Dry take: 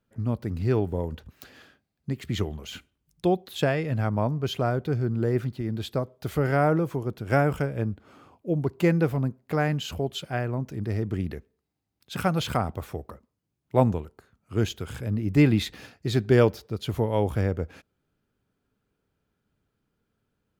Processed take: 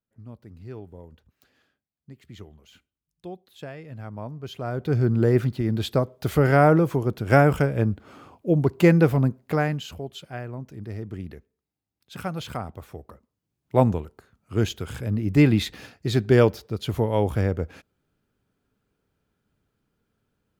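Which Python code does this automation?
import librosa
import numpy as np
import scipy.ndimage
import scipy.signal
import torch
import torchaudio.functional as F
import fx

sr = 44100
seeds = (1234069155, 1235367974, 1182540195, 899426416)

y = fx.gain(x, sr, db=fx.line((3.56, -15.0), (4.61, -7.0), (4.98, 5.5), (9.41, 5.5), (9.99, -6.0), (12.87, -6.0), (13.75, 2.0)))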